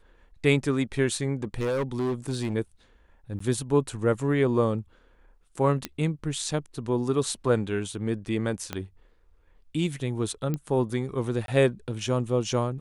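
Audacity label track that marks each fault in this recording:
1.430000	2.540000	clipping −23.5 dBFS
3.390000	3.400000	drop-out
5.850000	5.850000	click −13 dBFS
8.730000	8.730000	click −15 dBFS
10.540000	10.540000	click −17 dBFS
11.460000	11.480000	drop-out 22 ms

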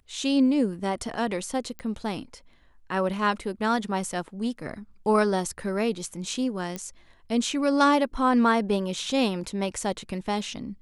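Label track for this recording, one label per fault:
1.790000	1.790000	click −23 dBFS
6.760000	6.760000	click −18 dBFS

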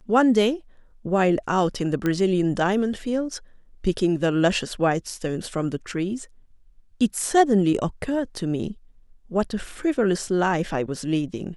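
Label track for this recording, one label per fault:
2.060000	2.060000	click −12 dBFS

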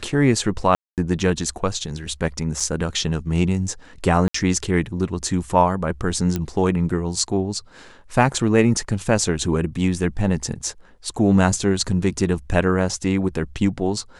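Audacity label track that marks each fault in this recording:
0.750000	0.980000	drop-out 228 ms
2.600000	2.600000	drop-out 4.1 ms
4.280000	4.340000	drop-out 64 ms
6.360000	6.360000	click −10 dBFS

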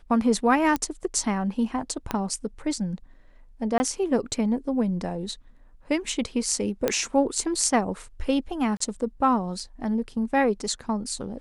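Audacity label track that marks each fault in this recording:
0.760000	0.760000	click −12 dBFS
2.110000	2.110000	click −12 dBFS
3.780000	3.800000	drop-out 20 ms
6.880000	6.880000	click −8 dBFS
8.770000	8.800000	drop-out 34 ms

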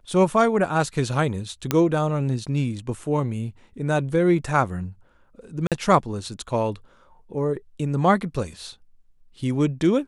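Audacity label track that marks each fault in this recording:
1.710000	1.710000	click −5 dBFS
5.670000	5.720000	drop-out 47 ms

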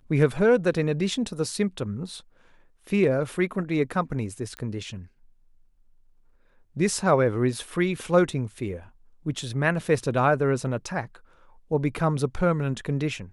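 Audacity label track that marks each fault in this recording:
4.570000	4.570000	click −20 dBFS

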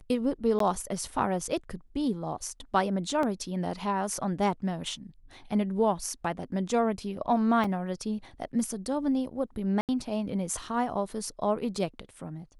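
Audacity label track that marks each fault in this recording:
0.590000	0.600000	drop-out 13 ms
3.230000	3.230000	drop-out 2.4 ms
7.640000	7.640000	drop-out 4 ms
9.810000	9.890000	drop-out 78 ms

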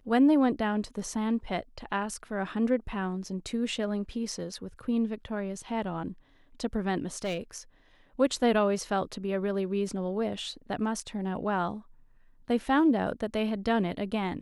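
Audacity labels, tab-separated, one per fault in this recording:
7.140000	7.380000	clipping −27 dBFS

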